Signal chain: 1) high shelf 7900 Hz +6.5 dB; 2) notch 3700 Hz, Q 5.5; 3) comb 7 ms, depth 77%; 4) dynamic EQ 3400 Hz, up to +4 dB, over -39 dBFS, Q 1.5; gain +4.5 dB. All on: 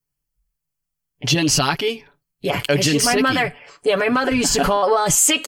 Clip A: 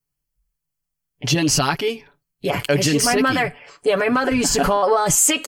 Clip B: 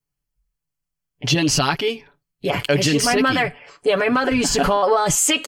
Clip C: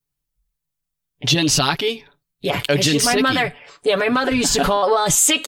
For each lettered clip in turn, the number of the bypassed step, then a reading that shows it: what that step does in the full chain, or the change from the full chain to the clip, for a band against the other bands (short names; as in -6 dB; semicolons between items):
4, 4 kHz band -2.5 dB; 1, 8 kHz band -3.0 dB; 2, 4 kHz band +2.0 dB